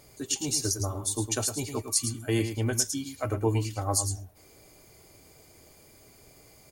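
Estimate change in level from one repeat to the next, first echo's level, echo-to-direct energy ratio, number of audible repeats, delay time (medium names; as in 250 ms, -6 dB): no regular repeats, -8.5 dB, -8.5 dB, 1, 109 ms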